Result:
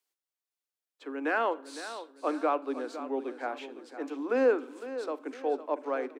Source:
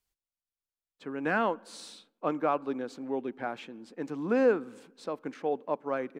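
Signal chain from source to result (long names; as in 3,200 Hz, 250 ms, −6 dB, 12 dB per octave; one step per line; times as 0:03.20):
Butterworth high-pass 260 Hz 72 dB per octave
on a send: repeating echo 507 ms, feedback 42%, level −12.5 dB
on the sum: four-comb reverb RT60 0.39 s, combs from 29 ms, DRR 19 dB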